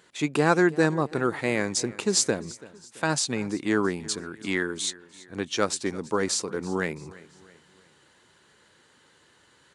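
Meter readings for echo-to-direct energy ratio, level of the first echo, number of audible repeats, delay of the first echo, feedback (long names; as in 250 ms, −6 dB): −19.0 dB, −20.0 dB, 3, 334 ms, 45%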